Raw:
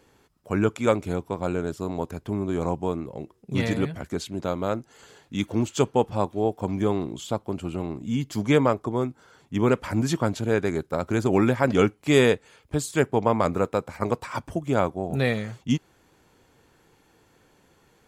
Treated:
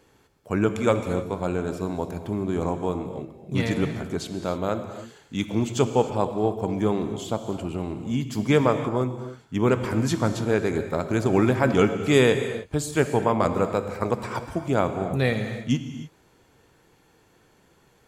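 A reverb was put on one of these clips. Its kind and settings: gated-style reverb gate 330 ms flat, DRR 8 dB

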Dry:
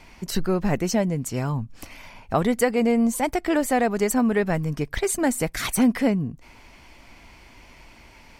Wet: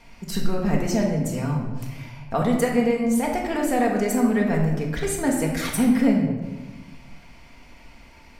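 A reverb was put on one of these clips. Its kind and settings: simulated room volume 740 m³, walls mixed, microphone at 1.7 m; trim -4.5 dB

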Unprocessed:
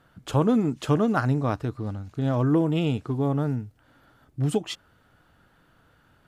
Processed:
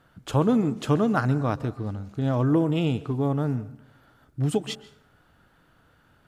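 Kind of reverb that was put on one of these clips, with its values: plate-style reverb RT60 0.68 s, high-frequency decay 0.6×, pre-delay 115 ms, DRR 17 dB

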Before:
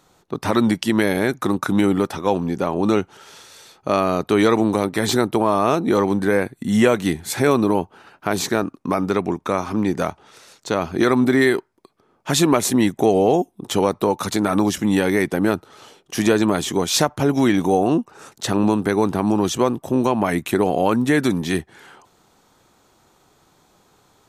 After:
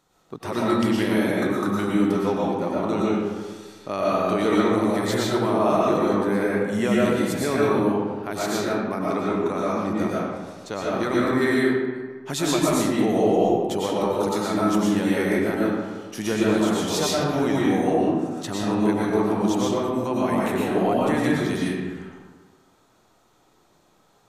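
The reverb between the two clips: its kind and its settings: algorithmic reverb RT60 1.5 s, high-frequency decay 0.55×, pre-delay 75 ms, DRR -6 dB; trim -10 dB

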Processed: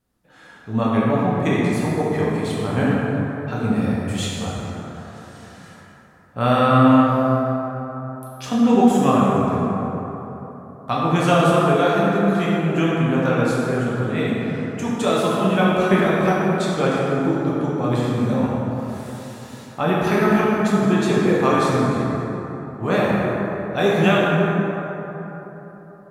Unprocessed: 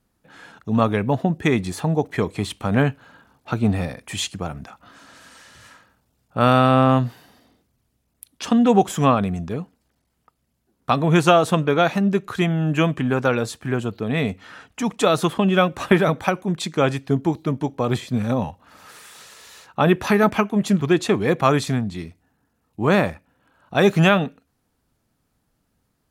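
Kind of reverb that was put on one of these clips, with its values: plate-style reverb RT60 3.8 s, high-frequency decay 0.4×, DRR -6.5 dB; trim -6.5 dB

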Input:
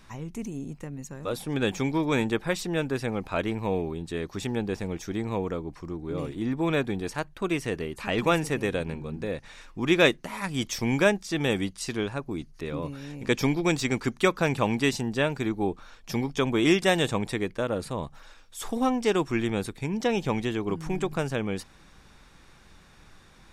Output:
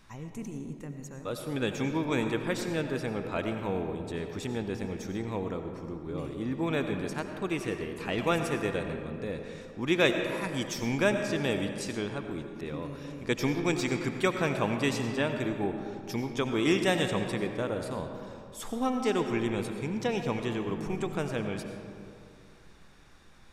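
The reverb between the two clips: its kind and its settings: algorithmic reverb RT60 2.5 s, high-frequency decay 0.45×, pre-delay 50 ms, DRR 5.5 dB; trim -4.5 dB

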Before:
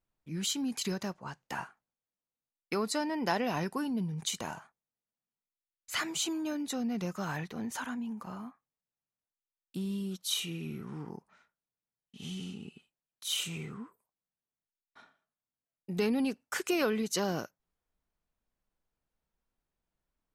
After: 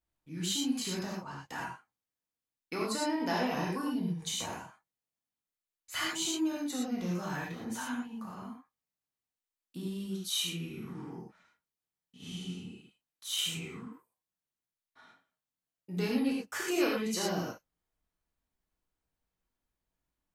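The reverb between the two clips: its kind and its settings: gated-style reverb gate 140 ms flat, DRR -4.5 dB; trim -6 dB

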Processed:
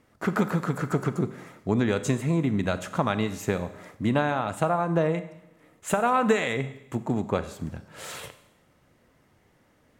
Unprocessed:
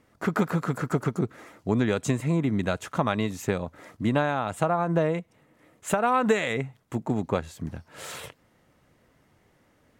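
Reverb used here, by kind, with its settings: Schroeder reverb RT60 0.88 s, combs from 30 ms, DRR 12 dB

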